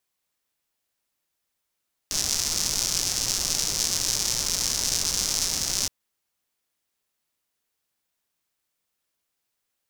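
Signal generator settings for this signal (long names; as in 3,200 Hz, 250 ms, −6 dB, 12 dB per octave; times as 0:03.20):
rain-like ticks over hiss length 3.77 s, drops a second 230, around 5,700 Hz, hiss −10 dB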